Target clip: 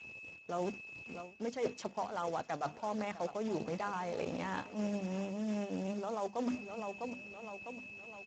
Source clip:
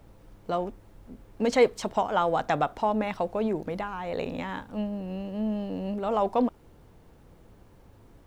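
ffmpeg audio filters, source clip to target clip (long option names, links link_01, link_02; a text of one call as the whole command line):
ffmpeg -i in.wav -af "bandreject=frequency=50:width_type=h:width=6,bandreject=frequency=100:width_type=h:width=6,bandreject=frequency=150:width_type=h:width=6,bandreject=frequency=200:width_type=h:width=6,bandreject=frequency=250:width_type=h:width=6,bandreject=frequency=300:width_type=h:width=6,aeval=exprs='sgn(val(0))*max(abs(val(0))-0.002,0)':channel_layout=same,acrusher=bits=10:mix=0:aa=0.000001,aecho=1:1:653|1306|1959|2612:0.119|0.0594|0.0297|0.0149,aeval=exprs='val(0)+0.00316*sin(2*PI*2600*n/s)':channel_layout=same,areverse,acompressor=threshold=-36dB:ratio=16,areverse,acrusher=bits=3:mode=log:mix=0:aa=0.000001,volume=2dB" -ar 16000 -c:a libspeex -b:a 13k out.spx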